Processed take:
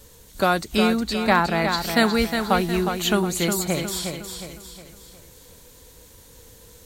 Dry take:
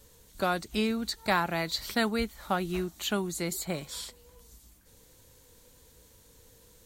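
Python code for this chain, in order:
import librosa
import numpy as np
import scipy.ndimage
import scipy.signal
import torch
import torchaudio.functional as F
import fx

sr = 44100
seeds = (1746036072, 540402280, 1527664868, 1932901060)

p1 = fx.high_shelf(x, sr, hz=4500.0, db=-10.0, at=(1.03, 1.78))
p2 = p1 + fx.echo_feedback(p1, sr, ms=361, feedback_pct=43, wet_db=-6.5, dry=0)
y = p2 * librosa.db_to_amplitude(8.5)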